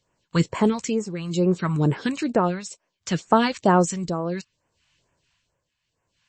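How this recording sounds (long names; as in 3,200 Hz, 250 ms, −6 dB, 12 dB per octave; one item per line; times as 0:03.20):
phaser sweep stages 2, 2.2 Hz, lowest notch 370–3,800 Hz
tremolo triangle 0.65 Hz, depth 80%
MP3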